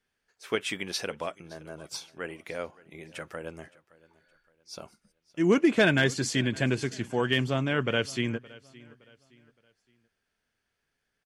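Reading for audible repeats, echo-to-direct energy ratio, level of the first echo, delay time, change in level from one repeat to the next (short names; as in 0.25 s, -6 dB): 2, -21.5 dB, -22.0 dB, 0.567 s, -9.0 dB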